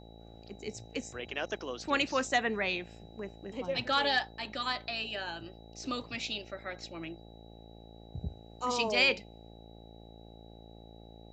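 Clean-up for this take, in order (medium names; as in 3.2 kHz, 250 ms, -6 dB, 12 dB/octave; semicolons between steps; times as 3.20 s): de-hum 56 Hz, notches 15; band-stop 3.9 kHz, Q 30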